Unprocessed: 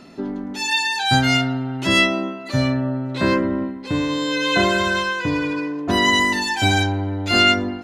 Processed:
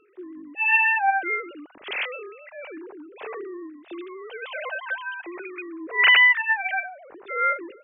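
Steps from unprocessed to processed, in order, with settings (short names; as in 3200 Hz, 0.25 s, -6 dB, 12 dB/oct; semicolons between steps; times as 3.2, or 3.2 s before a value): sine-wave speech; gain -5.5 dB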